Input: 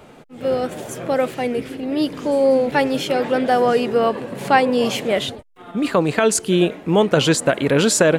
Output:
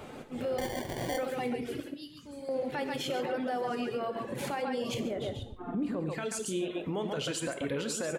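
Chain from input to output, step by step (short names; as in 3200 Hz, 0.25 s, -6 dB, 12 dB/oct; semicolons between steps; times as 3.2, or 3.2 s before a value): 1.8–2.49 passive tone stack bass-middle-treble 6-0-2; loudspeakers at several distances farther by 27 m -10 dB, 47 m -5 dB; reverb removal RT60 0.89 s; 4.94–6.1 tilt shelf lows +9.5 dB, about 710 Hz; compressor 3:1, threshold -31 dBFS, peak gain reduction 17 dB; limiter -25 dBFS, peak gain reduction 9 dB; 0.58–1.18 sample-rate reducer 1300 Hz, jitter 0%; non-linear reverb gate 0.18 s falling, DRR 8 dB; gain -1 dB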